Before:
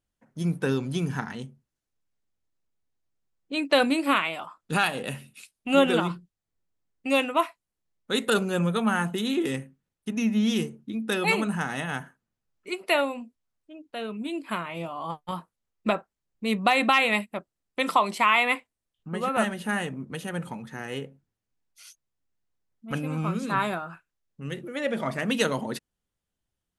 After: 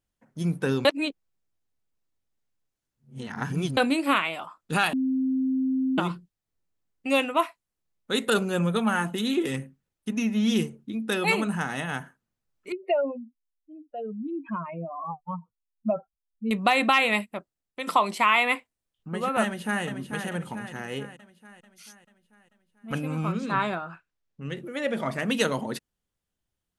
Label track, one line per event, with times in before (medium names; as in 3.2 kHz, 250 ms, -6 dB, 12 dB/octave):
0.850000	3.770000	reverse
4.930000	5.980000	bleep 262 Hz -22 dBFS
8.740000	10.850000	phaser 1.1 Hz, delay 4.2 ms, feedback 28%
12.720000	16.510000	spectral contrast enhancement exponent 3
17.200000	17.870000	fade out, to -9 dB
19.430000	19.840000	echo throw 440 ms, feedback 55%, level -7 dB
23.320000	24.570000	low-pass 5.8 kHz